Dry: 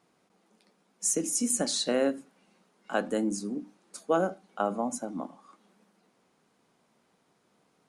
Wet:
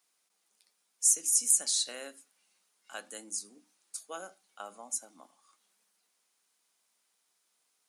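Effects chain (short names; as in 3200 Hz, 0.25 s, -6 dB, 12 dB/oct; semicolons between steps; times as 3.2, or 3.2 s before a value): differentiator; gain +3.5 dB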